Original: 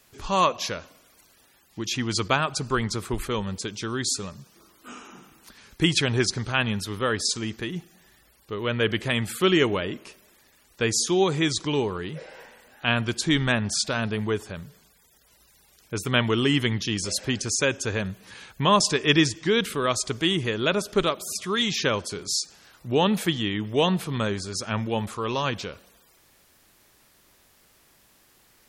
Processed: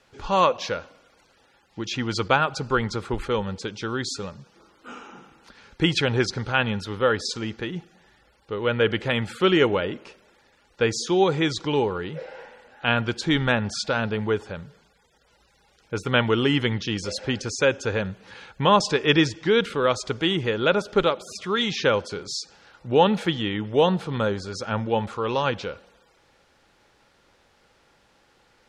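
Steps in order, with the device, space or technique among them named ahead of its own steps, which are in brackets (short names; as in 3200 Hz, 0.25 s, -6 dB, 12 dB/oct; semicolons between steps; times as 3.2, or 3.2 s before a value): inside a cardboard box (LPF 4700 Hz 12 dB/oct; small resonant body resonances 510/830/1400 Hz, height 8 dB, ringing for 30 ms); 23.6–24.94 dynamic EQ 2300 Hz, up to -5 dB, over -40 dBFS, Q 1.7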